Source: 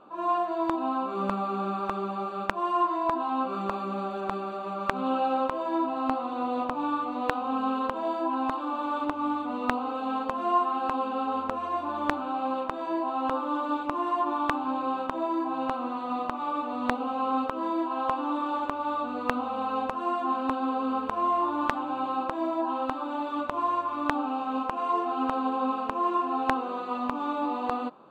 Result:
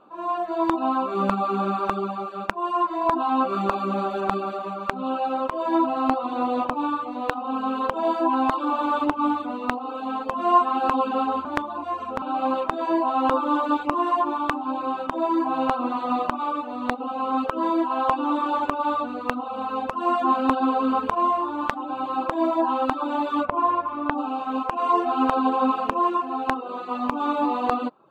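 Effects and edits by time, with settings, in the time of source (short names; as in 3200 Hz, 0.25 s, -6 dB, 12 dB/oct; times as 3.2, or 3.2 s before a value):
11.45–12.22 reverse
23.45–24.18 air absorption 310 m
whole clip: reverb removal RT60 0.53 s; AGC gain up to 11.5 dB; gain -1 dB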